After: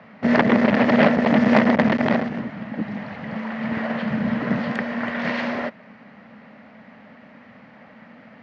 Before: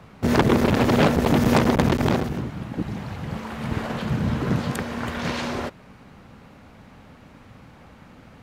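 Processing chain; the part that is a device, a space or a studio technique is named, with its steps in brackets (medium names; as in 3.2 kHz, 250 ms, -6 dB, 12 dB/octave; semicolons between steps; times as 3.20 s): kitchen radio (cabinet simulation 210–4400 Hz, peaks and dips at 220 Hz +10 dB, 360 Hz -8 dB, 620 Hz +7 dB, 1.9 kHz +10 dB, 3.7 kHz -5 dB)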